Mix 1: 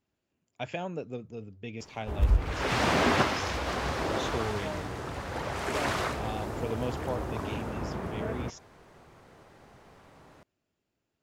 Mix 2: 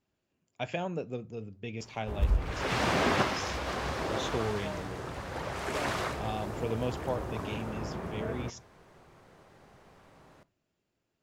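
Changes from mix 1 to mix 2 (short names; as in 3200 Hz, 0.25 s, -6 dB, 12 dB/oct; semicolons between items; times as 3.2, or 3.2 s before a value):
background -3.5 dB; reverb: on, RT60 0.30 s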